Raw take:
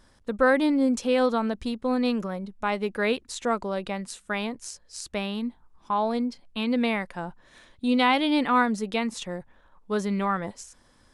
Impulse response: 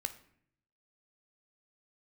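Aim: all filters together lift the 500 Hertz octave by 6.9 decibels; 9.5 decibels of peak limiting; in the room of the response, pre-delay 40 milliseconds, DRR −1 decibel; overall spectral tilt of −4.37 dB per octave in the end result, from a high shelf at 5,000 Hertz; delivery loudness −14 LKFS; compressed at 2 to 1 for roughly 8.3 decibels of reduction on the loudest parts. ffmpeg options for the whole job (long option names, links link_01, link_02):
-filter_complex "[0:a]equalizer=frequency=500:width_type=o:gain=7.5,highshelf=frequency=5000:gain=7,acompressor=threshold=-26dB:ratio=2,alimiter=limit=-21.5dB:level=0:latency=1,asplit=2[link_01][link_02];[1:a]atrim=start_sample=2205,adelay=40[link_03];[link_02][link_03]afir=irnorm=-1:irlink=0,volume=1dB[link_04];[link_01][link_04]amix=inputs=2:normalize=0,volume=14dB"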